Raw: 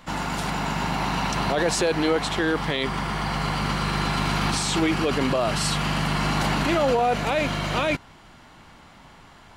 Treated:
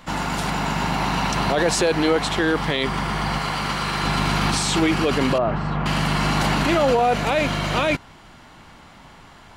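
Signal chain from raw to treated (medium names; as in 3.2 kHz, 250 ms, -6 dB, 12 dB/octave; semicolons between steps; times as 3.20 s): 3.38–4.04 s: bass shelf 340 Hz -7 dB; 5.38–5.86 s: low-pass 1.3 kHz 12 dB/octave; trim +3 dB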